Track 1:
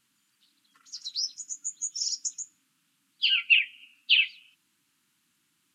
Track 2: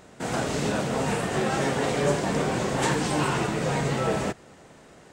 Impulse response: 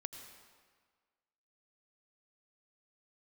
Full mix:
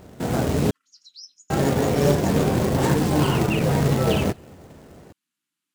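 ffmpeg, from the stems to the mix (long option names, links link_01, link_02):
-filter_complex "[0:a]highpass=160,volume=-12dB[link_01];[1:a]tiltshelf=frequency=840:gain=6.5,acrusher=bits=3:mode=log:mix=0:aa=0.000001,equalizer=frequency=84:width_type=o:width=0.44:gain=8.5,volume=1dB,asplit=3[link_02][link_03][link_04];[link_02]atrim=end=0.71,asetpts=PTS-STARTPTS,afade=type=out:start_time=0.706:duration=0.004:curve=hsin[link_05];[link_03]atrim=start=0.71:end=1.5,asetpts=PTS-STARTPTS,volume=0[link_06];[link_04]atrim=start=1.5,asetpts=PTS-STARTPTS,afade=type=in:duration=0.004:curve=hsin[link_07];[link_05][link_06][link_07]concat=n=3:v=0:a=1[link_08];[link_01][link_08]amix=inputs=2:normalize=0"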